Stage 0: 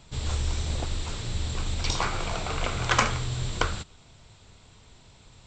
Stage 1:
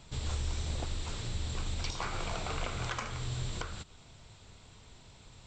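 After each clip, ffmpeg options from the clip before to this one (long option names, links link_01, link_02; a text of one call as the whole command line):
ffmpeg -i in.wav -filter_complex "[0:a]asplit=2[link_01][link_02];[link_02]acompressor=threshold=-36dB:ratio=6,volume=2.5dB[link_03];[link_01][link_03]amix=inputs=2:normalize=0,alimiter=limit=-13.5dB:level=0:latency=1:release=278,volume=-9dB" out.wav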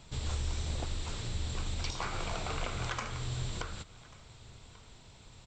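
ffmpeg -i in.wav -af "aecho=1:1:1139:0.0794" out.wav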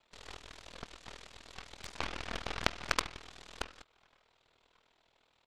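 ffmpeg -i in.wav -filter_complex "[0:a]acrossover=split=340 4200:gain=0.0794 1 0.1[link_01][link_02][link_03];[link_01][link_02][link_03]amix=inputs=3:normalize=0,aeval=exprs='val(0)*sin(2*PI*20*n/s)':channel_layout=same,aeval=exprs='0.0708*(cos(1*acos(clip(val(0)/0.0708,-1,1)))-cos(1*PI/2))+0.0316*(cos(3*acos(clip(val(0)/0.0708,-1,1)))-cos(3*PI/2))+0.00562*(cos(5*acos(clip(val(0)/0.0708,-1,1)))-cos(5*PI/2))+0.00282*(cos(8*acos(clip(val(0)/0.0708,-1,1)))-cos(8*PI/2))':channel_layout=same,volume=17dB" out.wav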